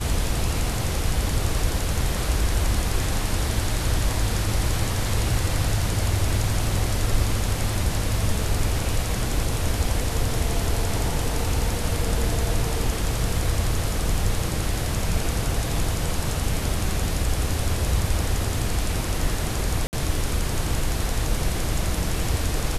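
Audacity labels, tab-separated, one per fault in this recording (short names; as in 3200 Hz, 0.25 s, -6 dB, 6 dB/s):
19.870000	19.930000	gap 59 ms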